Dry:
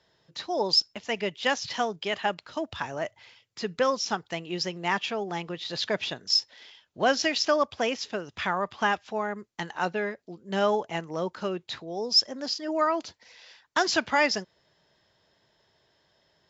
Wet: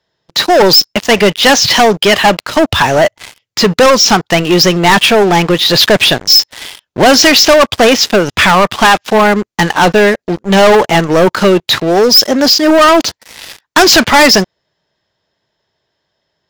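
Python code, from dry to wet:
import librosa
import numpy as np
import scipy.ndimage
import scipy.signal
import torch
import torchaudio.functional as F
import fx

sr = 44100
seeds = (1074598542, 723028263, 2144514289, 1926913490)

y = fx.leveller(x, sr, passes=5)
y = y * librosa.db_to_amplitude(9.0)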